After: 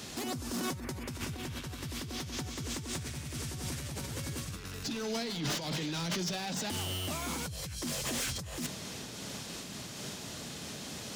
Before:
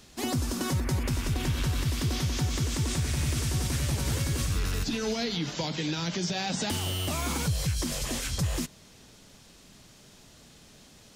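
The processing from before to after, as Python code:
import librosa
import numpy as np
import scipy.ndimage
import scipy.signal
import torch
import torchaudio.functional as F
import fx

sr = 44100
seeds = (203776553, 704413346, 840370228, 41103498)

y = fx.over_compress(x, sr, threshold_db=-38.0, ratio=-1.0)
y = scipy.signal.sosfilt(scipy.signal.butter(2, 95.0, 'highpass', fs=sr, output='sos'), y)
y = np.clip(y, -10.0 ** (-35.0 / 20.0), 10.0 ** (-35.0 / 20.0))
y = fx.am_noise(y, sr, seeds[0], hz=5.7, depth_pct=55)
y = y * librosa.db_to_amplitude(6.0)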